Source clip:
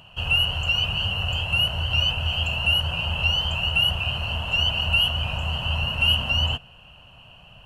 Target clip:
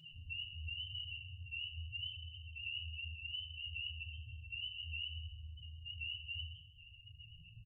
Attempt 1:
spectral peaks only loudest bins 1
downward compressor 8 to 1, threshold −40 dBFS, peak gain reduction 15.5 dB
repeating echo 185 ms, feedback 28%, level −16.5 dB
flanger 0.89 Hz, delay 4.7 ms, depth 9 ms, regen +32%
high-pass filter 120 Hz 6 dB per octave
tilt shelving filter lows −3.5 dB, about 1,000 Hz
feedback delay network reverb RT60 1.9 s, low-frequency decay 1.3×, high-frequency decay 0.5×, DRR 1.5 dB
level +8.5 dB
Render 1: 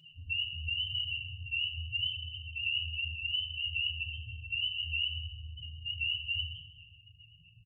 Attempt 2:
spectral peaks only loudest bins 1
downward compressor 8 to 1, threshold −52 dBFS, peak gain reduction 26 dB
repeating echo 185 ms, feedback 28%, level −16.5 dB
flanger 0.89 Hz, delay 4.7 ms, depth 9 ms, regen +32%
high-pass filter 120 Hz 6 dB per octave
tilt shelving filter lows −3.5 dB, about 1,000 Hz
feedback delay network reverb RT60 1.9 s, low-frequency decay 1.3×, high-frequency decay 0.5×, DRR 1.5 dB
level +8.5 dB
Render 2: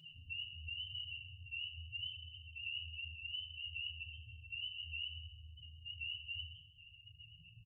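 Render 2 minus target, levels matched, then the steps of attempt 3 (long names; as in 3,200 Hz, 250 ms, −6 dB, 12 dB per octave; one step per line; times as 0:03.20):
125 Hz band −4.5 dB
spectral peaks only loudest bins 1
downward compressor 8 to 1, threshold −52 dBFS, peak gain reduction 26 dB
repeating echo 185 ms, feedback 28%, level −16.5 dB
flanger 0.89 Hz, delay 4.7 ms, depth 9 ms, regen +32%
tilt shelving filter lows −3.5 dB, about 1,000 Hz
feedback delay network reverb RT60 1.9 s, low-frequency decay 1.3×, high-frequency decay 0.5×, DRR 1.5 dB
level +8.5 dB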